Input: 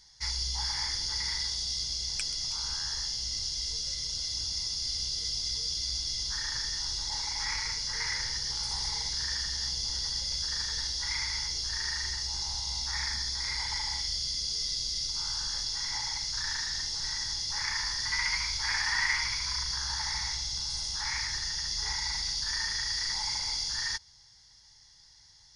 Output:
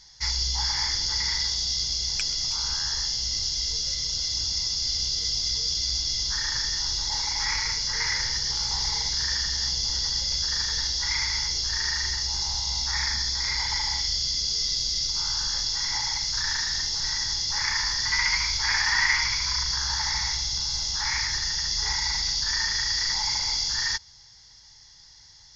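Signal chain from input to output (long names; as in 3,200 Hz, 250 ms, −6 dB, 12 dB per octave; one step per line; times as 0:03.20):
level +6 dB
A-law companding 128 kbit/s 16,000 Hz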